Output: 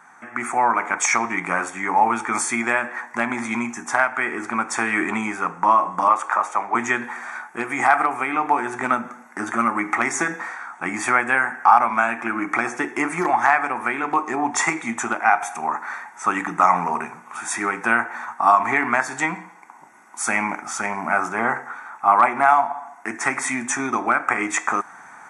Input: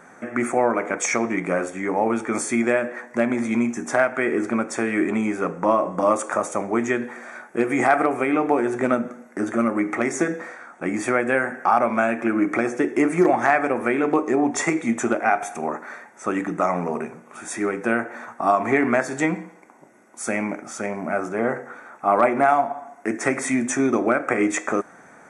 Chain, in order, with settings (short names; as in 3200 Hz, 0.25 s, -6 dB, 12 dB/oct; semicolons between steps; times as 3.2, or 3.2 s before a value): 6.08–6.75 three-band isolator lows -12 dB, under 350 Hz, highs -12 dB, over 4100 Hz; AGC; resonant low shelf 700 Hz -8 dB, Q 3; gain -2.5 dB